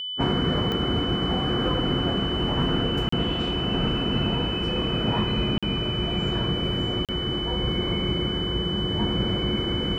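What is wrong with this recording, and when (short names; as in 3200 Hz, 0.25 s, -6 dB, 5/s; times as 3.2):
tone 3000 Hz -29 dBFS
0.72 pop -16 dBFS
3.09–3.12 gap 34 ms
5.58–5.63 gap 46 ms
7.05–7.09 gap 37 ms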